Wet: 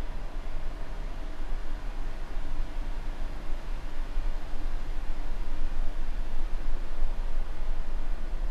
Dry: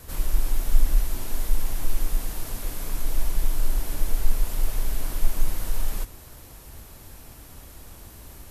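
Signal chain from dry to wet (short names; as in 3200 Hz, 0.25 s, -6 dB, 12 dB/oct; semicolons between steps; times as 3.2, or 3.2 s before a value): thinning echo 98 ms, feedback 81%, high-pass 420 Hz, level -3 dB; treble ducked by the level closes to 1300 Hz, closed at -16 dBFS; Paulstretch 47×, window 0.50 s, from 5.07; gain -7 dB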